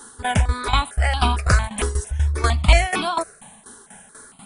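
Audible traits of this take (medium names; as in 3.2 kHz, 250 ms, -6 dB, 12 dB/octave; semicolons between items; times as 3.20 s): tremolo saw down 4.1 Hz, depth 80%; notches that jump at a steady rate 4.4 Hz 650–1900 Hz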